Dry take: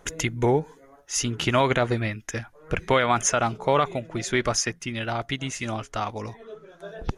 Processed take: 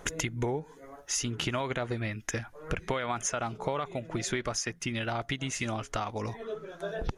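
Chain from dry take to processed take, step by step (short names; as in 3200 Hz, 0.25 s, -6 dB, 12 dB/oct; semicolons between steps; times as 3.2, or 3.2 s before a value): compressor 6:1, threshold -34 dBFS, peak gain reduction 17 dB; gain +4.5 dB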